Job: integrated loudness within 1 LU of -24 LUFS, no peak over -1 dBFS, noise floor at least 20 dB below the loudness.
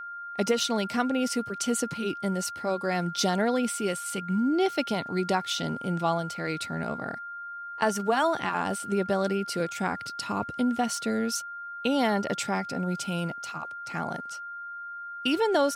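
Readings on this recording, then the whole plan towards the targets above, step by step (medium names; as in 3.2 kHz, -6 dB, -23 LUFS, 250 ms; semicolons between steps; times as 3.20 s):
steady tone 1.4 kHz; tone level -36 dBFS; loudness -29.0 LUFS; peak level -11.0 dBFS; loudness target -24.0 LUFS
-> band-stop 1.4 kHz, Q 30; trim +5 dB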